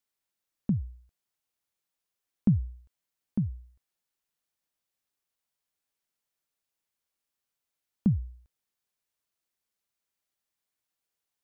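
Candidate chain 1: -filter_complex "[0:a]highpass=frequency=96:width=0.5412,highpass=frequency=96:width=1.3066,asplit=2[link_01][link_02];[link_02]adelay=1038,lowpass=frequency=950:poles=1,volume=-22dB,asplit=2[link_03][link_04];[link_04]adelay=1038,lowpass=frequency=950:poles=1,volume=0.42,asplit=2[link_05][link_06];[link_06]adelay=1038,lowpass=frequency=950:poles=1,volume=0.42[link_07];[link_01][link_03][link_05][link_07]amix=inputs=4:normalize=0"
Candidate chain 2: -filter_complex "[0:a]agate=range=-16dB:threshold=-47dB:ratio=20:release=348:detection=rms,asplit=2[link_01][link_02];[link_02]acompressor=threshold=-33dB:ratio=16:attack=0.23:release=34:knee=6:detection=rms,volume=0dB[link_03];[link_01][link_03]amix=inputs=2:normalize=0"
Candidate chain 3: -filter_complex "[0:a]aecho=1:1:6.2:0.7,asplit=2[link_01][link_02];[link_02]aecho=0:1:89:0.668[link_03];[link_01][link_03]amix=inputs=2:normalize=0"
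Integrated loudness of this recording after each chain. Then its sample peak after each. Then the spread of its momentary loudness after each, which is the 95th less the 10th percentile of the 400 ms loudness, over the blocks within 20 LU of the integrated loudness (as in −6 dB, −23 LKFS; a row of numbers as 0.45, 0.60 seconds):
−31.5, −29.5, −27.5 LKFS; −12.5, −12.5, −12.0 dBFS; 9, 15, 14 LU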